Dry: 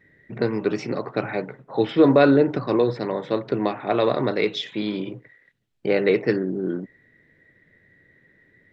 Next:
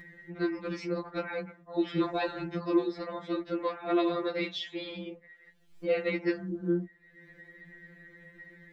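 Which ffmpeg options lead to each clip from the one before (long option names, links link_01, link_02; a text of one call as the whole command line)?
ffmpeg -i in.wav -af "acompressor=mode=upward:threshold=-34dB:ratio=2.5,afftfilt=real='re*2.83*eq(mod(b,8),0)':imag='im*2.83*eq(mod(b,8),0)':win_size=2048:overlap=0.75,volume=-4.5dB" out.wav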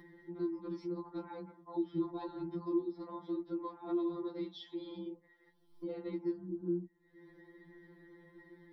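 ffmpeg -i in.wav -filter_complex "[0:a]superequalizer=6b=3.55:9b=3.55:11b=0.447:12b=0.282:15b=0.251,acrossover=split=220[link_01][link_02];[link_02]acompressor=threshold=-41dB:ratio=2.5[link_03];[link_01][link_03]amix=inputs=2:normalize=0,volume=-6dB" out.wav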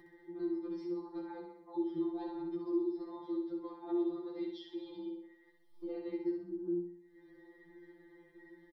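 ffmpeg -i in.wav -af "aecho=1:1:2.5:0.63,aecho=1:1:63|126|189|252|315|378:0.562|0.276|0.135|0.0662|0.0324|0.0159,volume=-4dB" out.wav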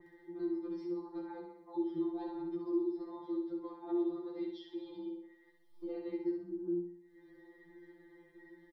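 ffmpeg -i in.wav -af "adynamicequalizer=threshold=0.001:dfrequency=2000:dqfactor=0.7:tfrequency=2000:tqfactor=0.7:attack=5:release=100:ratio=0.375:range=1.5:mode=cutabove:tftype=highshelf" out.wav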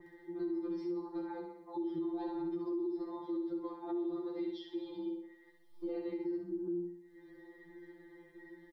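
ffmpeg -i in.wav -af "alimiter=level_in=10dB:limit=-24dB:level=0:latency=1:release=58,volume=-10dB,volume=3dB" out.wav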